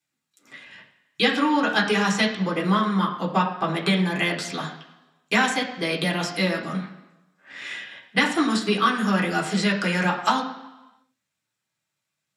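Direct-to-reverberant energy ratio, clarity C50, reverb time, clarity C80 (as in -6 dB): -4.0 dB, 7.5 dB, 1.0 s, 10.5 dB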